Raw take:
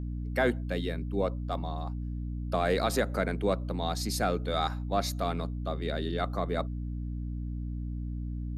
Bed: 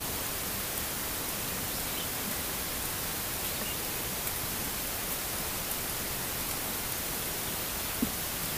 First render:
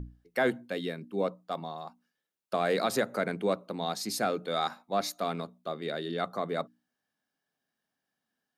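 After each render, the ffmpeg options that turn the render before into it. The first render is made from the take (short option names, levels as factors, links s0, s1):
-af "bandreject=f=60:t=h:w=6,bandreject=f=120:t=h:w=6,bandreject=f=180:t=h:w=6,bandreject=f=240:t=h:w=6,bandreject=f=300:t=h:w=6"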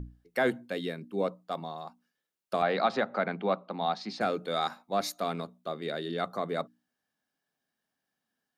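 -filter_complex "[0:a]asettb=1/sr,asplit=3[s0][s1][s2];[s0]atrim=end=2.624[s3];[s1]atrim=start=2.62:end=4.21,asetpts=PTS-STARTPTS,afade=t=in:d=0.004:c=qsin,afade=t=out:st=1.586:d=0.004:c=qsin,highpass=f=150:w=0.5412,highpass=f=150:w=1.3066,equalizer=f=310:t=q:w=4:g=-4,equalizer=f=450:t=q:w=4:g=-4,equalizer=f=790:t=q:w=4:g=7,equalizer=f=1200:t=q:w=4:g=4,lowpass=f=4200:w=0.5412,lowpass=f=4200:w=1.3066[s4];[s2]atrim=start=4.206[s5];[s3][s4]acrossfade=d=0.004:c1=hsin:c2=qsin[s6];[s6][s5]acrossfade=d=0.004:c1=qsin:c2=hsin"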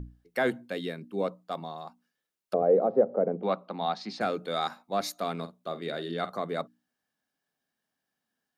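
-filter_complex "[0:a]asettb=1/sr,asplit=3[s0][s1][s2];[s0]atrim=end=2.544[s3];[s1]atrim=start=2.54:end=3.43,asetpts=PTS-STARTPTS,afade=t=in:d=0.004:c=qsin,afade=t=out:st=0.886:d=0.004:c=qsin,lowpass=f=490:t=q:w=3.9[s4];[s2]atrim=start=3.426[s5];[s3][s4]acrossfade=d=0.004:c1=hsin:c2=qsin[s6];[s6][s5]acrossfade=d=0.004:c1=qsin:c2=hsin,asettb=1/sr,asplit=3[s7][s8][s9];[s7]atrim=end=5.364[s10];[s8]atrim=start=5.36:end=6.38,asetpts=PTS-STARTPTS,afade=t=in:d=0.004:c=qsin,afade=t=out:st=1.016:d=0.004:c=qsin,asplit=2[s11][s12];[s12]adelay=48,volume=0.237[s13];[s11][s13]amix=inputs=2:normalize=0,atrim=end_sample=44982[s14];[s9]atrim=start=6.376[s15];[s10][s14]acrossfade=d=0.004:c1=hsin:c2=qsin[s16];[s16][s15]acrossfade=d=0.004:c1=qsin:c2=hsin"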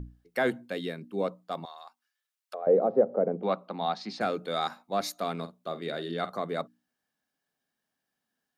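-filter_complex "[0:a]asettb=1/sr,asplit=3[s0][s1][s2];[s0]atrim=end=1.654[s3];[s1]atrim=start=1.65:end=2.67,asetpts=PTS-STARTPTS,afade=t=in:d=0.004:c=qsin,afade=t=out:st=1.016:d=0.004:c=qsin,highpass=1100[s4];[s2]atrim=start=2.666[s5];[s3][s4]acrossfade=d=0.004:c1=hsin:c2=qsin[s6];[s6][s5]acrossfade=d=0.004:c1=qsin:c2=hsin"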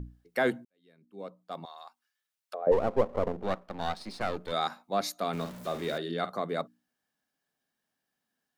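-filter_complex "[0:a]asplit=3[s0][s1][s2];[s0]afade=t=out:st=2.71:d=0.02[s3];[s1]aeval=exprs='if(lt(val(0),0),0.251*val(0),val(0))':c=same,afade=t=in:st=2.71:d=0.02,afade=t=out:st=4.51:d=0.02[s4];[s2]afade=t=in:st=4.51:d=0.02[s5];[s3][s4][s5]amix=inputs=3:normalize=0,asettb=1/sr,asplit=3[s6][s7][s8];[s6]atrim=end=5.334[s9];[s7]atrim=start=5.33:end=5.98,asetpts=PTS-STARTPTS,afade=t=in:d=0.004:c=qsin,afade=t=out:st=0.646:d=0.004:c=qsin,aeval=exprs='val(0)+0.5*0.0112*sgn(val(0))':c=same[s10];[s8]atrim=start=5.976[s11];[s9][s10]acrossfade=d=0.004:c1=hsin:c2=qsin[s12];[s12][s11]acrossfade=d=0.004:c1=qsin:c2=hsin,asplit=2[s13][s14];[s13]atrim=end=0.65,asetpts=PTS-STARTPTS,afade=t=out:st=0.646:d=0.004:c=hsin[s15];[s14]atrim=start=0.65,asetpts=PTS-STARTPTS,afade=t=in:d=1.16:c=qua[s16];[s15][s16]concat=n=2:v=0:a=1"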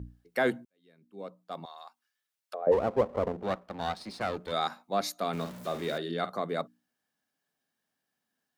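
-af "highpass=51"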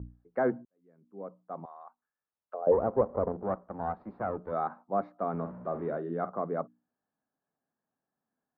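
-af "lowpass=f=1300:w=0.5412,lowpass=f=1300:w=1.3066"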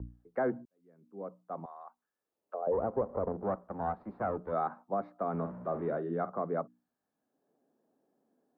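-filter_complex "[0:a]acrossover=split=300|490[s0][s1][s2];[s1]acompressor=mode=upward:threshold=0.00141:ratio=2.5[s3];[s0][s3][s2]amix=inputs=3:normalize=0,alimiter=limit=0.0841:level=0:latency=1:release=141"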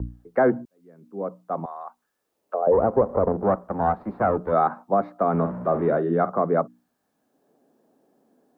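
-af "volume=3.98"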